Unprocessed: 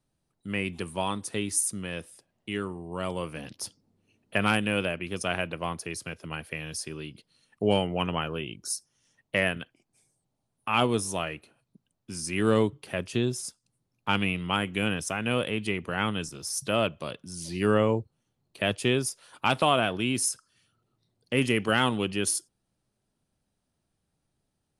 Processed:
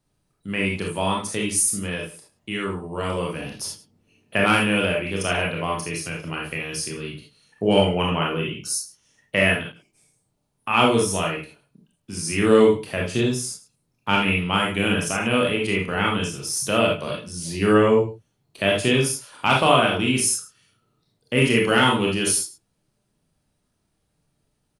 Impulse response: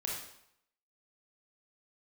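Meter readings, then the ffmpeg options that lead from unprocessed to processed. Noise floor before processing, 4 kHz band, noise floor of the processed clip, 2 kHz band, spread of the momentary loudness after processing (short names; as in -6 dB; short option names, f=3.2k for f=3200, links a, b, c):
-80 dBFS, +7.0 dB, -72 dBFS, +7.0 dB, 13 LU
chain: -filter_complex "[0:a]asplit=2[a][b];[b]adelay=105,volume=-16dB,highshelf=f=4k:g=-2.36[c];[a][c]amix=inputs=2:normalize=0[d];[1:a]atrim=start_sample=2205,atrim=end_sample=3969[e];[d][e]afir=irnorm=-1:irlink=0,volume=5.5dB"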